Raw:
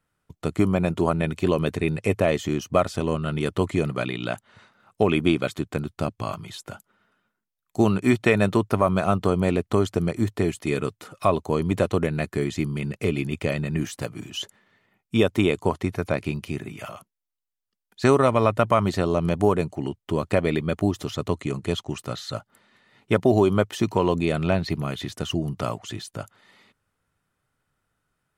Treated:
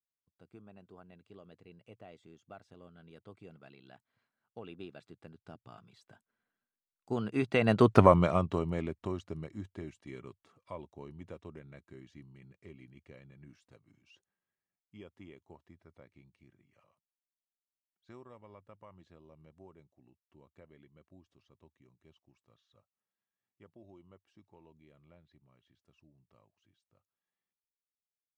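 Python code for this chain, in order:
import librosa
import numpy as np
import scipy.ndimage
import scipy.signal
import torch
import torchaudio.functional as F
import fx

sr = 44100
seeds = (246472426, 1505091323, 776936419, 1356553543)

y = fx.doppler_pass(x, sr, speed_mps=30, closest_m=4.0, pass_at_s=7.98)
y = fx.air_absorb(y, sr, metres=72.0)
y = y * librosa.db_to_amplitude(2.5)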